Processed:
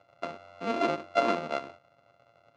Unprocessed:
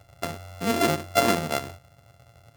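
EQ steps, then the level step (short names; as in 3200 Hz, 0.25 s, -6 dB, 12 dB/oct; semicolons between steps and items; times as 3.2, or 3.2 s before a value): air absorption 150 m; speaker cabinet 350–8400 Hz, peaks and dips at 420 Hz -5 dB, 800 Hz -5 dB, 1800 Hz -10 dB, 3300 Hz -6 dB, 5200 Hz -6 dB, 7300 Hz -5 dB; high shelf 6000 Hz -5.5 dB; 0.0 dB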